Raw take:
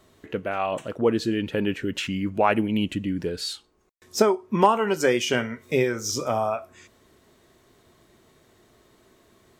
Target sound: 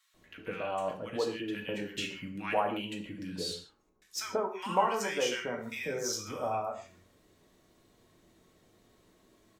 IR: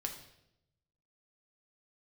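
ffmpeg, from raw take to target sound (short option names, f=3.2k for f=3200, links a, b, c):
-filter_complex "[0:a]acrossover=split=470|2500[a][b][c];[a]acompressor=threshold=-35dB:ratio=6[d];[d][b][c]amix=inputs=3:normalize=0,acrossover=split=1400[e][f];[e]adelay=140[g];[g][f]amix=inputs=2:normalize=0[h];[1:a]atrim=start_sample=2205,afade=t=out:st=0.25:d=0.01,atrim=end_sample=11466,asetrate=57330,aresample=44100[i];[h][i]afir=irnorm=-1:irlink=0,volume=-3.5dB"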